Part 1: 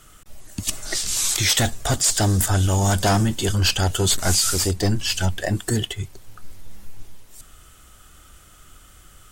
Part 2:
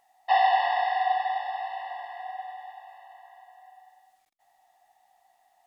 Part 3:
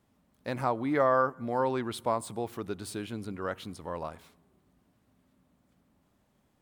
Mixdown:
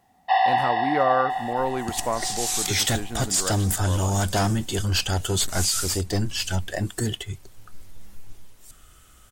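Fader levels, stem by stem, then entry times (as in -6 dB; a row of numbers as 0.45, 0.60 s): -4.0, +1.5, +2.5 dB; 1.30, 0.00, 0.00 s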